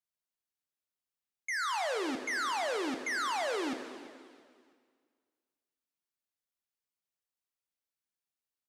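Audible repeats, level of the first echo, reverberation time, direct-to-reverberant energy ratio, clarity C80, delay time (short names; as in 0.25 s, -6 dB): 2, -18.5 dB, 2.0 s, 6.5 dB, 8.5 dB, 0.332 s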